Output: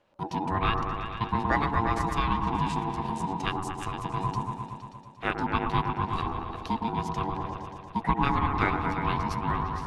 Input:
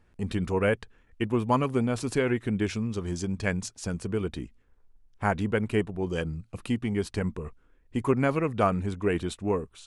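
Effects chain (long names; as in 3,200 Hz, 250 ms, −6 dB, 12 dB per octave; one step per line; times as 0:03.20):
low-shelf EQ 210 Hz +9 dB
formants moved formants +5 semitones
three-way crossover with the lows and the highs turned down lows −16 dB, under 260 Hz, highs −13 dB, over 7,700 Hz
echo whose low-pass opens from repeat to repeat 116 ms, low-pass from 750 Hz, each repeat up 1 octave, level −3 dB
ring modulation 570 Hz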